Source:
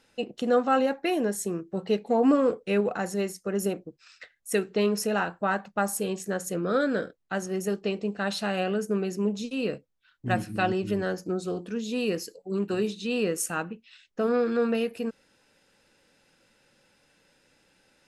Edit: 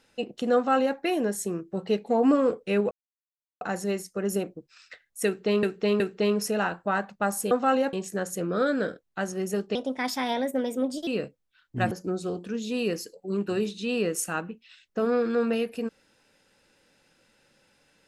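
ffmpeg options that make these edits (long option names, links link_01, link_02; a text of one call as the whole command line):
ffmpeg -i in.wav -filter_complex "[0:a]asplit=9[link_01][link_02][link_03][link_04][link_05][link_06][link_07][link_08][link_09];[link_01]atrim=end=2.91,asetpts=PTS-STARTPTS,afade=type=out:start_time=2.906:duration=0.004:curve=hsin,apad=pad_dur=0.7[link_10];[link_02]atrim=start=2.91:end=4.932,asetpts=PTS-STARTPTS,afade=type=in:duration=0.004:curve=hsin[link_11];[link_03]atrim=start=4.558:end=4.932[link_12];[link_04]atrim=start=4.558:end=6.072[link_13];[link_05]atrim=start=0.548:end=0.972[link_14];[link_06]atrim=start=6.068:end=7.894[link_15];[link_07]atrim=start=7.89:end=9.57,asetpts=PTS-STARTPTS,asetrate=56007,aresample=44100,atrim=end_sample=58337,asetpts=PTS-STARTPTS[link_16];[link_08]atrim=start=9.566:end=10.412[link_17];[link_09]atrim=start=11.128[link_18];[link_10][link_11]concat=n=2:v=0:a=1[link_19];[link_19][link_12]acrossfade=duration=0.004:curve1=hsin:curve2=hsin[link_20];[link_20][link_13]acrossfade=duration=0.004:curve1=hsin:curve2=hsin[link_21];[link_21][link_14]acrossfade=duration=0.004:curve1=hsin:curve2=hsin[link_22];[link_22][link_15]acrossfade=duration=0.004:curve1=hsin:curve2=hsin[link_23];[link_23][link_16]acrossfade=duration=0.004:curve1=hsin:curve2=hsin[link_24];[link_24][link_17]acrossfade=duration=0.004:curve1=hsin:curve2=hsin[link_25];[link_25][link_18]acrossfade=duration=0.004:curve1=hsin:curve2=hsin" out.wav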